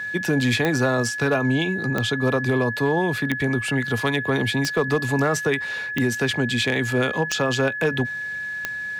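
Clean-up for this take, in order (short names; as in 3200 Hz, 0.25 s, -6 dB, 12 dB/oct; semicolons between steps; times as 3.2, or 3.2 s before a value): clip repair -12.5 dBFS; de-click; notch 1700 Hz, Q 30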